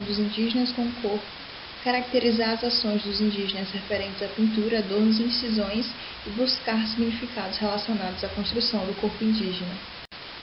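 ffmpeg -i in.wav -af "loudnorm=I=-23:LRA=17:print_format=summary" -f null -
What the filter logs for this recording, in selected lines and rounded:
Input Integrated:    -26.1 LUFS
Input True Peak:     -10.9 dBTP
Input LRA:             2.7 LU
Input Threshold:     -36.5 LUFS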